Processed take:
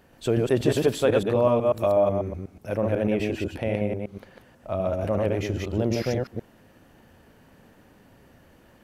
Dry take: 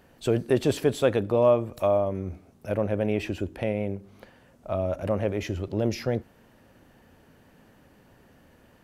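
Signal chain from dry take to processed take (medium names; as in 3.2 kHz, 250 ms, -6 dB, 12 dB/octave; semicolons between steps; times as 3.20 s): chunks repeated in reverse 123 ms, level -2 dB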